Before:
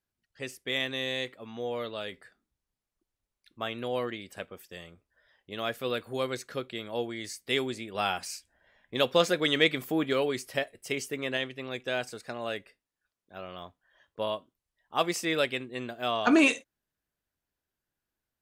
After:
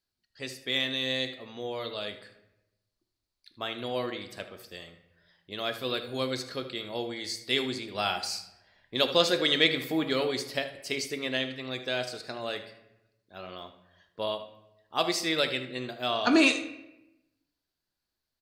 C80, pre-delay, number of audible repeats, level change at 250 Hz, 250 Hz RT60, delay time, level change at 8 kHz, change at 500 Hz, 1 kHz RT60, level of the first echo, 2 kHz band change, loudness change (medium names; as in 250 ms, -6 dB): 14.0 dB, 3 ms, 1, 0.0 dB, 1.2 s, 77 ms, +1.0 dB, -0.5 dB, 0.90 s, -13.5 dB, +0.5 dB, +1.0 dB